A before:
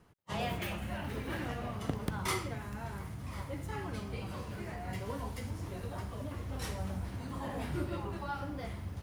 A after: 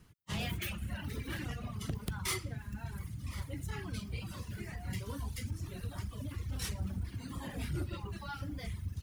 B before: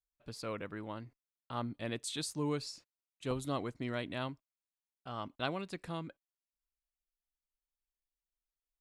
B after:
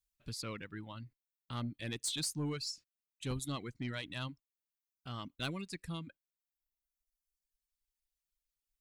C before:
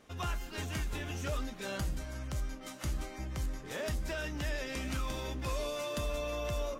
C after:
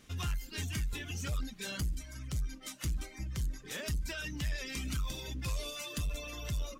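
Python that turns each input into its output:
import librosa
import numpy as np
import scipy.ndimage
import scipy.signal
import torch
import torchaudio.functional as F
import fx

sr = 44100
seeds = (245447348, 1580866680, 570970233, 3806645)

y = fx.dereverb_blind(x, sr, rt60_s=1.7)
y = fx.peak_eq(y, sr, hz=680.0, db=-14.0, octaves=2.4)
y = 10.0 ** (-35.5 / 20.0) * np.tanh(y / 10.0 ** (-35.5 / 20.0))
y = y * 10.0 ** (7.0 / 20.0)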